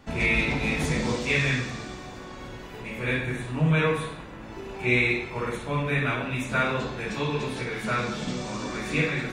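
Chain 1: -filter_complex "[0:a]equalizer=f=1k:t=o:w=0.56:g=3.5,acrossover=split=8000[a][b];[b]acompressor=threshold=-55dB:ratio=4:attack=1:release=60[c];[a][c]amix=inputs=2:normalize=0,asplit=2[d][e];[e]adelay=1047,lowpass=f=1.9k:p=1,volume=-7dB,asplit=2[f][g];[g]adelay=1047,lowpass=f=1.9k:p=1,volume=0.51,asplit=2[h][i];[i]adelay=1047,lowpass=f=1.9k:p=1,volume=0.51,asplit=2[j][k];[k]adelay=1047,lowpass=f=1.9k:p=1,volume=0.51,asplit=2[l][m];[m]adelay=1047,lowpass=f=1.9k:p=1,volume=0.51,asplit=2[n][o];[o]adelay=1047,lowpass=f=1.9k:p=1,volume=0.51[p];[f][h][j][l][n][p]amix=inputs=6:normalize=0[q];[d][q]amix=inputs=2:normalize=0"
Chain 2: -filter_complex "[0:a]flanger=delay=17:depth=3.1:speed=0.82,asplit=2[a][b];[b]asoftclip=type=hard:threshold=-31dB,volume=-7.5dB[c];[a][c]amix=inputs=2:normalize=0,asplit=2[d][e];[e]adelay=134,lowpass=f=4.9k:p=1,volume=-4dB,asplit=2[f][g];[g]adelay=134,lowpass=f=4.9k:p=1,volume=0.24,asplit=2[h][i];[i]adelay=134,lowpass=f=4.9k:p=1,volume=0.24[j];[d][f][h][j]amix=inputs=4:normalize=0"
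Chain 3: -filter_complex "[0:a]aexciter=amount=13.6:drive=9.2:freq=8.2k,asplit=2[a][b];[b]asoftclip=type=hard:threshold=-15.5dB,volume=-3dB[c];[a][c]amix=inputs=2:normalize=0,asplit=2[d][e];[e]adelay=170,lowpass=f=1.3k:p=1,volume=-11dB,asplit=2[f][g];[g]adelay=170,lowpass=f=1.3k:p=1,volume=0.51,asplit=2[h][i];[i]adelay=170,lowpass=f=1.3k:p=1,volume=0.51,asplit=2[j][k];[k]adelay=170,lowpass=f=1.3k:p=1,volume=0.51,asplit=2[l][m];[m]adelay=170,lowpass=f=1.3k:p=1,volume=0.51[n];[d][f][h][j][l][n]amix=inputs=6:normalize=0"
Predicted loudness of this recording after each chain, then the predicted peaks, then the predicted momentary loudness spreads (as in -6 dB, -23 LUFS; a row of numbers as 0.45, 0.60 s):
-26.0, -26.5, -19.5 LUFS; -9.5, -12.5, -4.0 dBFS; 10, 14, 13 LU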